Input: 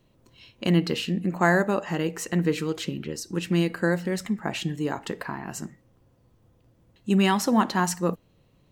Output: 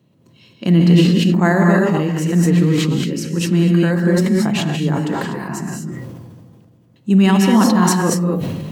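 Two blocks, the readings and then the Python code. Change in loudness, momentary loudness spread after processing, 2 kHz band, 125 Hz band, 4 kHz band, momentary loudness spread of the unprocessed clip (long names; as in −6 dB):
+10.5 dB, 14 LU, +5.5 dB, +13.5 dB, +7.5 dB, 12 LU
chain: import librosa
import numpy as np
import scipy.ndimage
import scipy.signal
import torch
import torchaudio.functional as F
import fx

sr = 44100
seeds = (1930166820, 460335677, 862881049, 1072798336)

y = scipy.signal.sosfilt(scipy.signal.butter(2, 120.0, 'highpass', fs=sr, output='sos'), x)
y = fx.peak_eq(y, sr, hz=160.0, db=10.5, octaves=1.8)
y = fx.rev_gated(y, sr, seeds[0], gate_ms=270, shape='rising', drr_db=0.5)
y = fx.sustainer(y, sr, db_per_s=29.0)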